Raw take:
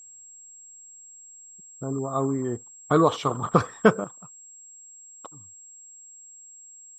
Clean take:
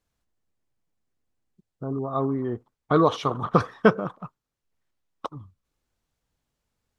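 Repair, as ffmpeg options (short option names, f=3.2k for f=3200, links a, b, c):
-af "bandreject=f=7.6k:w=30,asetnsamples=n=441:p=0,asendcmd='4.04 volume volume 11dB',volume=0dB"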